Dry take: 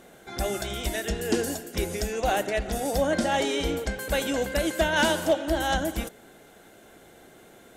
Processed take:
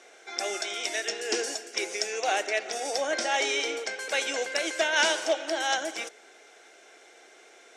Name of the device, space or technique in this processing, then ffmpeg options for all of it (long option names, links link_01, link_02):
phone speaker on a table: -af "highpass=frequency=410:width=0.5412,highpass=frequency=410:width=1.3066,equalizer=frequency=560:width_type=q:width=4:gain=-5,equalizer=frequency=960:width_type=q:width=4:gain=-4,equalizer=frequency=2300:width_type=q:width=4:gain=7,equalizer=frequency=5600:width_type=q:width=4:gain=10,lowpass=frequency=8500:width=0.5412,lowpass=frequency=8500:width=1.3066"